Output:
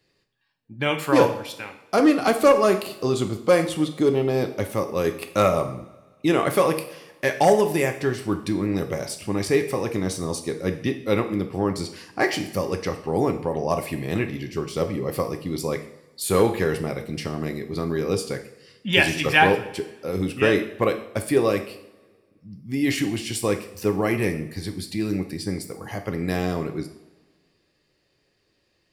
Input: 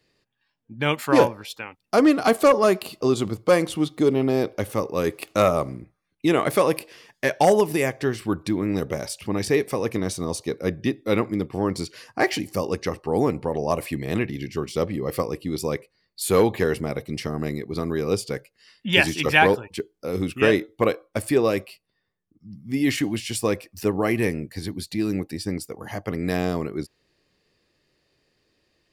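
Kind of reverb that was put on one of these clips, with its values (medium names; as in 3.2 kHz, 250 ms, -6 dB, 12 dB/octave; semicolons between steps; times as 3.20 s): two-slope reverb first 0.58 s, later 1.7 s, from -17 dB, DRR 5.5 dB; trim -1 dB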